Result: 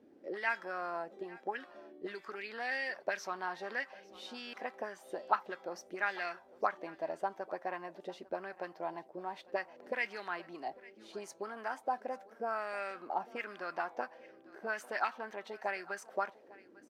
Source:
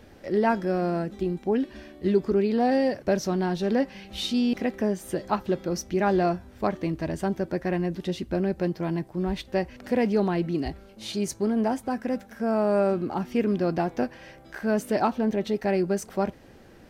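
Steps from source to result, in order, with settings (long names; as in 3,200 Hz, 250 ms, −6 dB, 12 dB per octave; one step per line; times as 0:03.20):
envelope filter 280–2,000 Hz, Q 2.7, up, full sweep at −18.5 dBFS
RIAA equalisation recording
single-tap delay 850 ms −21 dB
level +1 dB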